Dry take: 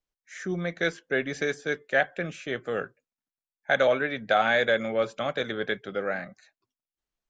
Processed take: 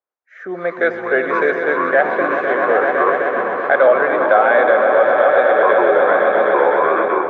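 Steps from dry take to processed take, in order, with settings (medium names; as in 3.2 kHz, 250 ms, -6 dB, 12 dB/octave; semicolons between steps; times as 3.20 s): on a send: echo with a slow build-up 127 ms, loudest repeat 5, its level -10 dB; on the sum: level rider gain up to 11.5 dB; ever faster or slower copies 88 ms, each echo -7 st, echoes 3, each echo -6 dB; Butterworth band-pass 820 Hz, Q 0.73; in parallel at +3 dB: peak limiter -10 dBFS, peak gain reduction 6.5 dB; on the sum: trim -2.5 dB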